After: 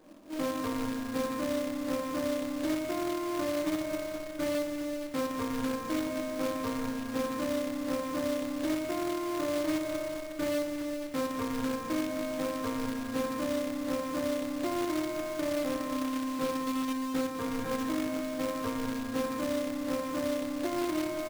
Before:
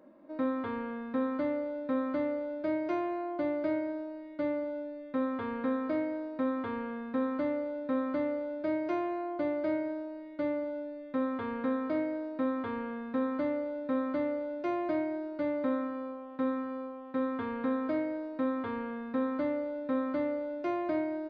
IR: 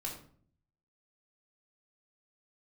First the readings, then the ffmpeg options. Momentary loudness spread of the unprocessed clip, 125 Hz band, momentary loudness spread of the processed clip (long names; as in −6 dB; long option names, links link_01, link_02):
5 LU, +8.0 dB, 3 LU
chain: -filter_complex "[0:a]lowshelf=frequency=100:gain=9.5,aecho=1:1:207|414|621|828|1035|1242:0.447|0.237|0.125|0.0665|0.0352|0.0187[link_01];[1:a]atrim=start_sample=2205[link_02];[link_01][link_02]afir=irnorm=-1:irlink=0,alimiter=level_in=2dB:limit=-24dB:level=0:latency=1:release=309,volume=-2dB,acrusher=bits=2:mode=log:mix=0:aa=0.000001,volume=2dB"